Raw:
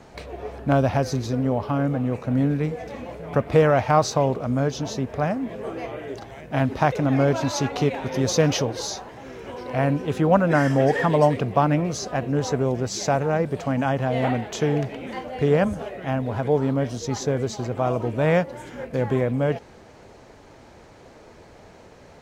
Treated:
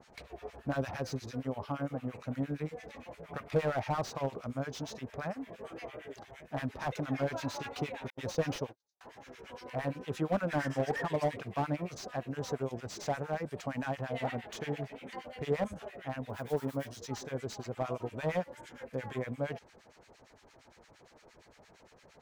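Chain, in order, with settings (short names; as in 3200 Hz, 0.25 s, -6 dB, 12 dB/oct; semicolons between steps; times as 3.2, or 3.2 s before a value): 8.1–9.01 gate -23 dBFS, range -55 dB; tilt shelf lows -4 dB, about 810 Hz; 16.29–17.02 modulation noise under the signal 22 dB; harmonic tremolo 8.7 Hz, depth 100%, crossover 1200 Hz; slew limiter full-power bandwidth 76 Hz; gain -7 dB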